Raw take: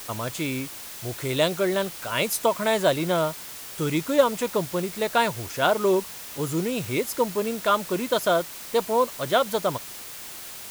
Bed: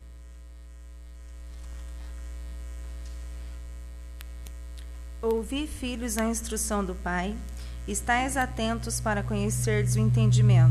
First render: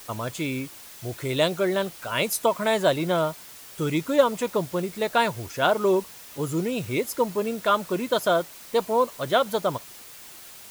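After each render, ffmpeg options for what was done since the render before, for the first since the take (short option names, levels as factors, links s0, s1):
-af "afftdn=nr=6:nf=-39"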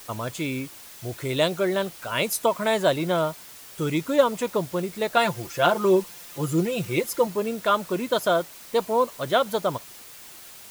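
-filter_complex "[0:a]asettb=1/sr,asplit=3[s0][s1][s2];[s0]atrim=end=5.164[s3];[s1]atrim=start=5.16:end=7.27,asetpts=PTS-STARTPTS,afade=t=in:d=0.004:c=qsin,afade=t=out:st=2.106:d=0.004:c=qsin,aecho=1:1:5.8:0.65,atrim=end_sample=93051[s4];[s2]atrim=start=7.266[s5];[s3][s4]acrossfade=d=0.004:c1=hsin:c2=qsin[s6];[s6][s5]acrossfade=d=0.004:c1=qsin:c2=hsin"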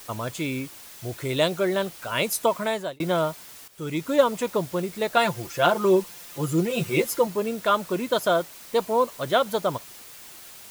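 -filter_complex "[0:a]asettb=1/sr,asplit=3[s0][s1][s2];[s0]atrim=end=6.694[s3];[s1]atrim=start=6.69:end=7.19,asetpts=PTS-STARTPTS,afade=t=in:d=0.004:c=qsin,afade=t=out:st=0.496:d=0.004:c=qsin,asplit=2[s4][s5];[s5]adelay=13,volume=0.708[s6];[s4][s6]amix=inputs=2:normalize=0,atrim=end_sample=22050[s7];[s2]atrim=start=7.186[s8];[s3][s7]acrossfade=d=0.004:c1=hsin:c2=qsin[s9];[s9][s8]acrossfade=d=0.004:c1=qsin:c2=hsin,asplit=3[s10][s11][s12];[s10]atrim=end=3,asetpts=PTS-STARTPTS,afade=t=out:st=2.56:d=0.44[s13];[s11]atrim=start=3:end=3.68,asetpts=PTS-STARTPTS,afade=t=in:d=0.004:c=hsin,afade=t=out:st=0.676:d=0.004:c=hsin:silence=0.211349[s14];[s12]atrim=start=3.68,asetpts=PTS-STARTPTS,afade=t=in:d=0.45:silence=0.211349[s15];[s13][s14][s15]concat=n=3:v=0:a=1"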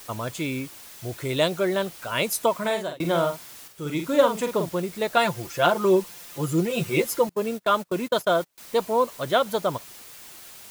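-filter_complex "[0:a]asettb=1/sr,asplit=3[s0][s1][s2];[s0]atrim=end=2.594[s3];[s1]atrim=start=2.59:end=4.69,asetpts=PTS-STARTPTS,afade=t=in:d=0.004:c=qsin,afade=t=out:st=2.096:d=0.004:c=qsin,asplit=2[s4][s5];[s5]adelay=47,volume=0.473[s6];[s4][s6]amix=inputs=2:normalize=0,atrim=end_sample=92610[s7];[s2]atrim=start=4.686[s8];[s3][s7]acrossfade=d=0.004:c1=hsin:c2=qsin[s9];[s9][s8]acrossfade=d=0.004:c1=qsin:c2=hsin,asettb=1/sr,asplit=3[s10][s11][s12];[s10]atrim=end=7.294[s13];[s11]atrim=start=7.29:end=8.58,asetpts=PTS-STARTPTS,afade=t=in:d=0.004:c=qsin,afade=t=out:st=1.286:d=0.004:c=qsin,agate=range=0.0355:threshold=0.0251:ratio=16:release=100:detection=peak[s14];[s12]atrim=start=8.576[s15];[s13][s14]acrossfade=d=0.004:c1=hsin:c2=qsin[s16];[s16][s15]acrossfade=d=0.004:c1=qsin:c2=hsin"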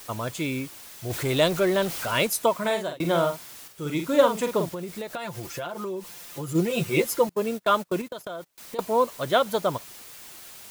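-filter_complex "[0:a]asettb=1/sr,asplit=3[s0][s1][s2];[s0]atrim=end=1.104[s3];[s1]atrim=start=1.1:end=2.27,asetpts=PTS-STARTPTS,afade=t=in:d=0.004:c=qsin,afade=t=out:st=1.166:d=0.004:c=qsin,aeval=exprs='val(0)+0.5*0.0316*sgn(val(0))':c=same[s4];[s2]atrim=start=2.266[s5];[s3][s4]acrossfade=d=0.004:c1=hsin:c2=qsin[s6];[s6][s5]acrossfade=d=0.004:c1=qsin:c2=hsin,asplit=3[s7][s8][s9];[s7]afade=t=out:st=4.69:d=0.02[s10];[s8]acompressor=threshold=0.0355:ratio=12:attack=3.2:release=140:knee=1:detection=peak,afade=t=in:st=4.69:d=0.02,afade=t=out:st=6.54:d=0.02[s11];[s9]afade=t=in:st=6.54:d=0.02[s12];[s10][s11][s12]amix=inputs=3:normalize=0,asettb=1/sr,asplit=3[s13][s14][s15];[s13]atrim=end=8.014[s16];[s14]atrim=start=8.01:end=8.79,asetpts=PTS-STARTPTS,afade=t=in:d=0.004:c=qsin,afade=t=out:st=0.776:d=0.004:c=qsin,acompressor=threshold=0.0251:ratio=8:attack=3.2:release=140:knee=1:detection=peak[s17];[s15]atrim=start=8.786[s18];[s16][s17]acrossfade=d=0.004:c1=hsin:c2=qsin[s19];[s19][s18]acrossfade=d=0.004:c1=qsin:c2=hsin"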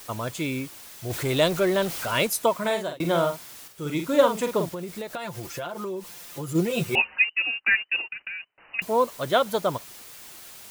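-filter_complex "[0:a]asettb=1/sr,asplit=3[s0][s1][s2];[s0]atrim=end=6.954[s3];[s1]atrim=start=6.95:end=8.82,asetpts=PTS-STARTPTS,afade=t=in:d=0.004:c=qsin,afade=t=out:st=1.866:d=0.004:c=qsin,lowpass=f=2600:t=q:w=0.5098,lowpass=f=2600:t=q:w=0.6013,lowpass=f=2600:t=q:w=0.9,lowpass=f=2600:t=q:w=2.563,afreqshift=-3000[s4];[s2]atrim=start=8.816[s5];[s3][s4]acrossfade=d=0.004:c1=hsin:c2=qsin[s6];[s6][s5]acrossfade=d=0.004:c1=qsin:c2=hsin"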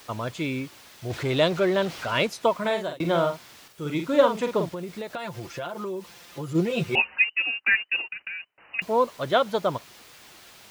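-filter_complex "[0:a]highpass=41,acrossover=split=5600[s0][s1];[s1]acompressor=threshold=0.002:ratio=4:attack=1:release=60[s2];[s0][s2]amix=inputs=2:normalize=0"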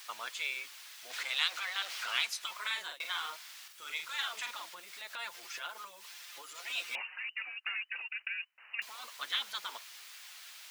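-af "afftfilt=real='re*lt(hypot(re,im),0.178)':imag='im*lt(hypot(re,im),0.178)':win_size=1024:overlap=0.75,highpass=1500"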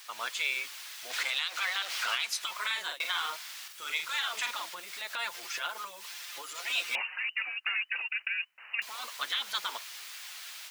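-af "alimiter=level_in=1.12:limit=0.0631:level=0:latency=1:release=159,volume=0.891,dynaudnorm=f=110:g=3:m=2.11"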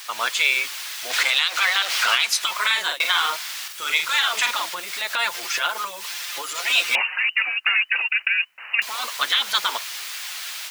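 -af "volume=3.98"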